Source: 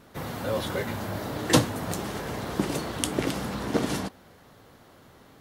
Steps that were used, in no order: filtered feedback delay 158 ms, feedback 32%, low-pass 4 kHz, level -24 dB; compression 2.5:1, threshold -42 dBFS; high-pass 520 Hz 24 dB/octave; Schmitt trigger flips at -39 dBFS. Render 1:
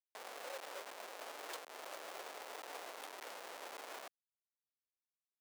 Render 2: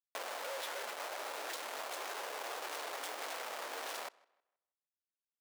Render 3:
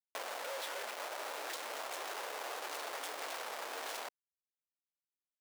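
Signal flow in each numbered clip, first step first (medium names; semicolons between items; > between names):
filtered feedback delay > compression > Schmitt trigger > high-pass; Schmitt trigger > high-pass > compression > filtered feedback delay; filtered feedback delay > Schmitt trigger > high-pass > compression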